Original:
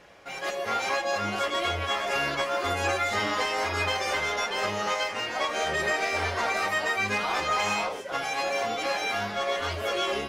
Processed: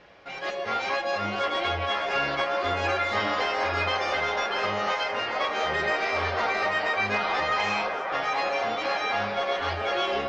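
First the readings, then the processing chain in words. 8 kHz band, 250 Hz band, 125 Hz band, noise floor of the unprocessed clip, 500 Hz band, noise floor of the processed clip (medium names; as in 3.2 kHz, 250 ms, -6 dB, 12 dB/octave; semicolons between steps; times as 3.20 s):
-9.5 dB, 0.0 dB, 0.0 dB, -37 dBFS, +1.5 dB, -33 dBFS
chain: low-pass 5.1 kHz 24 dB/octave; on a send: feedback echo behind a band-pass 763 ms, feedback 65%, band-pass 910 Hz, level -4.5 dB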